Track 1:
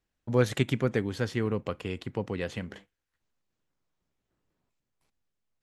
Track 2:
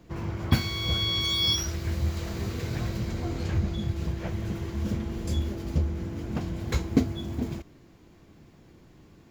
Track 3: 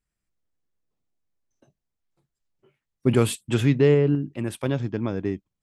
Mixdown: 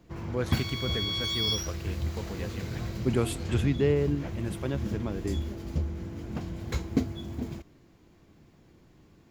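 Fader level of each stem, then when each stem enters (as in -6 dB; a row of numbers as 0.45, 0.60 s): -7.0, -4.0, -7.0 dB; 0.00, 0.00, 0.00 s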